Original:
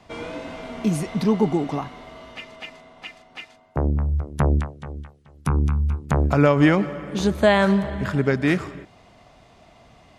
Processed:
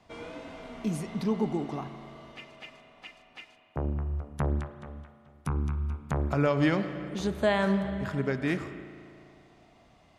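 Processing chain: 6.48–7.09 s: peaking EQ 4.3 kHz +10.5 dB 0.53 oct; spring tank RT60 2.5 s, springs 36 ms, chirp 30 ms, DRR 10 dB; trim -9 dB

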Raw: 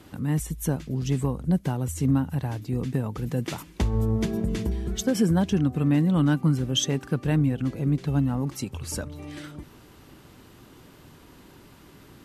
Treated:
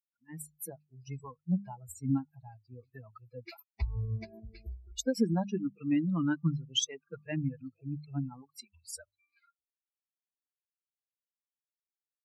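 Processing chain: expander on every frequency bin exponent 3; spectral noise reduction 28 dB; hum notches 50/100/150/200 Hz; trim -2 dB

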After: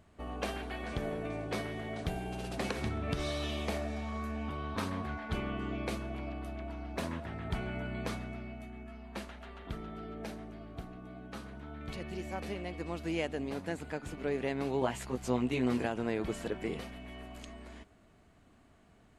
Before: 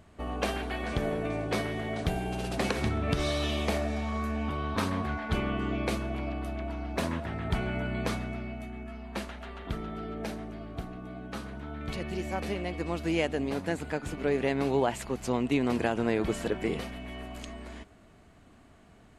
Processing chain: 14.80–15.86 s: doubling 16 ms -2 dB; trim -6 dB

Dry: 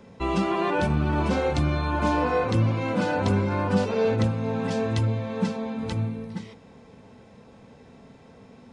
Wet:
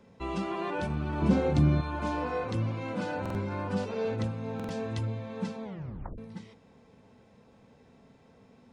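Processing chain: 1.22–1.81 s: peaking EQ 180 Hz +12.5 dB 2.4 oct; 5.64 s: tape stop 0.54 s; buffer glitch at 3.21/4.55 s, samples 2048, times 2; trim -8.5 dB

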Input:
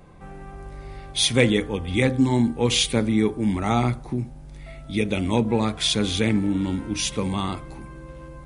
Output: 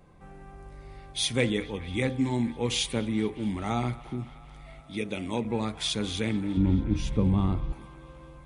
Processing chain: 4.80–5.45 s: high-pass 170 Hz 6 dB/octave; 6.57–7.73 s: tilt EQ -4 dB/octave; on a send: feedback echo behind a band-pass 216 ms, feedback 76%, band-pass 1.6 kHz, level -16 dB; on the sum: trim -7.5 dB

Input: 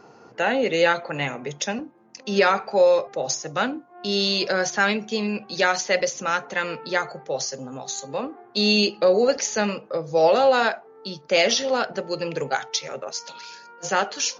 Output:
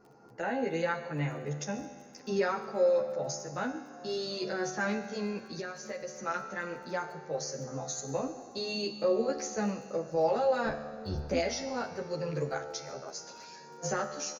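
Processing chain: 10.65–11.39 s: octave divider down 1 oct, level +3 dB; recorder AGC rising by 8.6 dB/s; bass shelf 230 Hz +8 dB; reverberation RT60 4.5 s, pre-delay 123 ms, DRR 16 dB; 5.46–6.26 s: compression 6:1, threshold -24 dBFS, peak gain reduction 10 dB; peaking EQ 3.2 kHz -11.5 dB 0.73 oct; feedback comb 74 Hz, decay 1.3 s, harmonics all, mix 70%; delay 145 ms -21.5 dB; crackle 11 per s -44 dBFS; endless flanger 11.5 ms -0.63 Hz

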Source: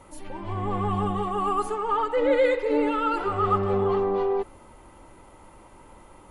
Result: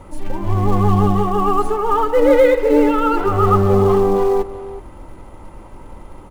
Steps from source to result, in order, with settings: tilt EQ -2 dB/octave; in parallel at -10 dB: short-mantissa float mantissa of 2-bit; on the sum: speakerphone echo 370 ms, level -15 dB; trim +5 dB

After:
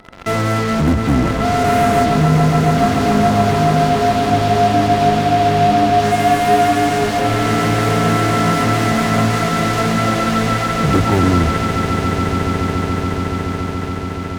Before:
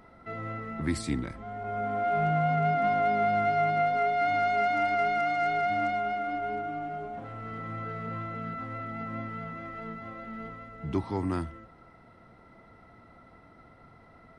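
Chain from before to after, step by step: low-pass that closes with the level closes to 310 Hz, closed at -25 dBFS; dynamic bell 1.7 kHz, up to -6 dB, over -54 dBFS, Q 1.2; in parallel at -11.5 dB: fuzz box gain 46 dB, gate -48 dBFS; on the sum: echo with a slow build-up 142 ms, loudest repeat 8, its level -11 dB; trim +8.5 dB

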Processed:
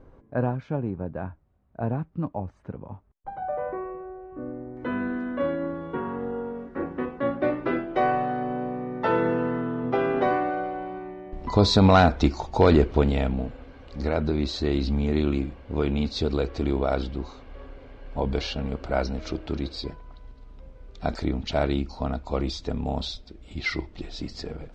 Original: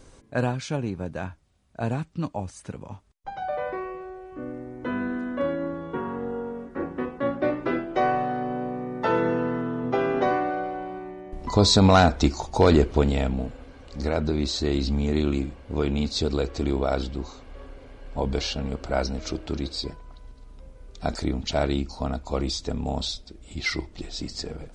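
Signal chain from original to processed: low-pass 1.2 kHz 12 dB/octave, from 4.77 s 3.9 kHz

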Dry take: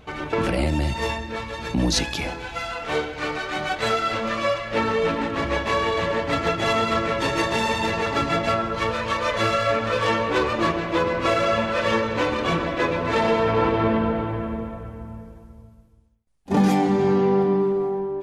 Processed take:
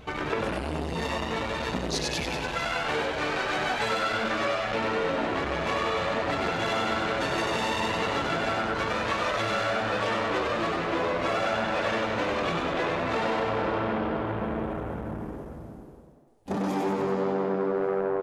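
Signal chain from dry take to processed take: compression, threshold -27 dBFS, peak gain reduction 12 dB; on a send: frequency-shifting echo 96 ms, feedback 58%, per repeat +93 Hz, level -3 dB; on the sum: transformer saturation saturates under 1 kHz; trim +1.5 dB

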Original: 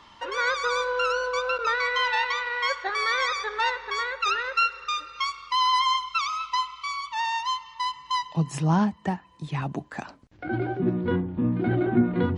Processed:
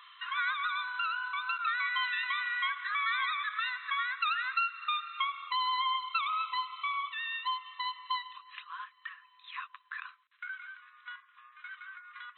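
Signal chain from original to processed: compression 3:1, threshold -29 dBFS, peak gain reduction 10.5 dB; brick-wall FIR band-pass 1–4.1 kHz

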